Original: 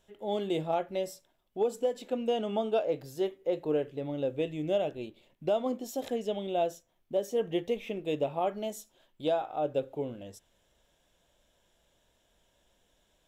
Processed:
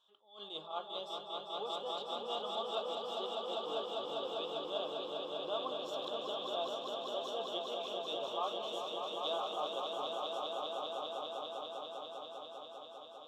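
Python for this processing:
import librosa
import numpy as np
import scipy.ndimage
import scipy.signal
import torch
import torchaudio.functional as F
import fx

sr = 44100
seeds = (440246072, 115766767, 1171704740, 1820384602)

y = fx.double_bandpass(x, sr, hz=2000.0, octaves=1.6)
y = fx.echo_swell(y, sr, ms=199, loudest=5, wet_db=-5.5)
y = fx.attack_slew(y, sr, db_per_s=130.0)
y = F.gain(torch.from_numpy(y), 6.5).numpy()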